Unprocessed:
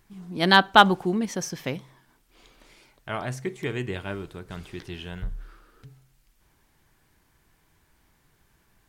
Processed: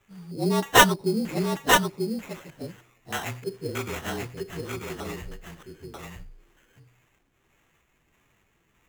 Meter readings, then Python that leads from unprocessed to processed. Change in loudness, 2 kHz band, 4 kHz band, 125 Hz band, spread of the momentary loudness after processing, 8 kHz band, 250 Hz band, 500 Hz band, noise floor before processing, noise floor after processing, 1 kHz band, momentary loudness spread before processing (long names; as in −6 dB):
−1.5 dB, −0.5 dB, −0.5 dB, +0.5 dB, 23 LU, +9.0 dB, 0.0 dB, +1.5 dB, −66 dBFS, −68 dBFS, −2.5 dB, 22 LU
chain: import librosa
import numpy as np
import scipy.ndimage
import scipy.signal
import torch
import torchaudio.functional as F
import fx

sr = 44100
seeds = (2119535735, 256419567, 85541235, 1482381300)

y = fx.partial_stretch(x, sr, pct=112)
y = fx.high_shelf(y, sr, hz=2000.0, db=10.0)
y = fx.filter_lfo_lowpass(y, sr, shape='square', hz=1.6, low_hz=450.0, high_hz=4100.0, q=1.2)
y = fx.low_shelf(y, sr, hz=73.0, db=-7.0)
y = fx.sample_hold(y, sr, seeds[0], rate_hz=4700.0, jitter_pct=0)
y = y + 10.0 ** (-3.5 / 20.0) * np.pad(y, (int(939 * sr / 1000.0), 0))[:len(y)]